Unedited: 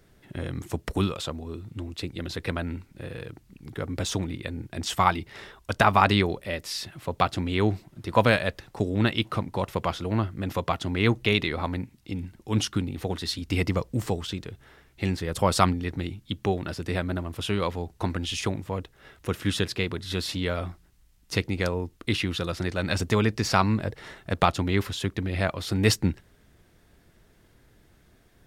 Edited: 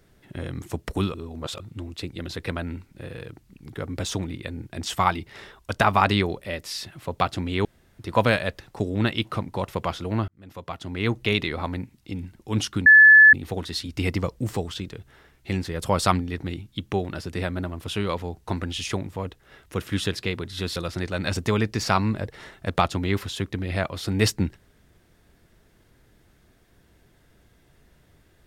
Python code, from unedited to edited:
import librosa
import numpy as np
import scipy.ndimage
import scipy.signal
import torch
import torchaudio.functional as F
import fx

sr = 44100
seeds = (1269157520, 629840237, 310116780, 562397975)

y = fx.edit(x, sr, fx.reverse_span(start_s=1.14, length_s=0.46),
    fx.room_tone_fill(start_s=7.65, length_s=0.34),
    fx.fade_in_span(start_s=10.28, length_s=1.04),
    fx.insert_tone(at_s=12.86, length_s=0.47, hz=1730.0, db=-7.5),
    fx.cut(start_s=20.29, length_s=2.11), tone=tone)